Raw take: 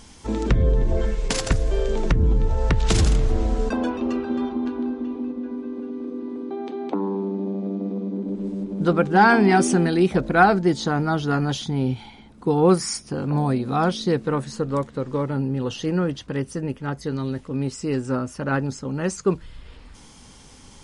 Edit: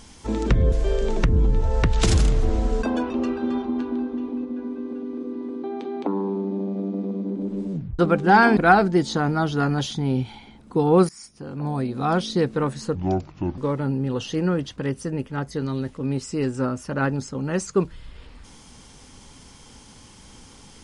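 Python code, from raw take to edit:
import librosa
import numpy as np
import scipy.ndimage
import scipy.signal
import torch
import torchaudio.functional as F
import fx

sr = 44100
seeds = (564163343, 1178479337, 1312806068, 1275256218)

y = fx.edit(x, sr, fx.cut(start_s=0.72, length_s=0.87),
    fx.tape_stop(start_s=8.59, length_s=0.27),
    fx.cut(start_s=9.44, length_s=0.84),
    fx.fade_in_from(start_s=12.8, length_s=1.16, floor_db=-20.5),
    fx.speed_span(start_s=14.66, length_s=0.42, speed=0.67), tone=tone)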